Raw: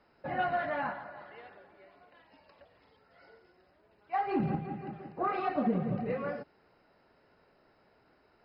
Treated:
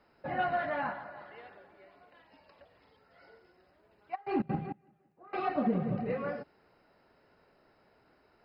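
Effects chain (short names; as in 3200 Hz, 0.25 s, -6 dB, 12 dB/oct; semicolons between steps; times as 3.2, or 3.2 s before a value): 4.14–5.43 step gate "xx.xxx........" 197 bpm -24 dB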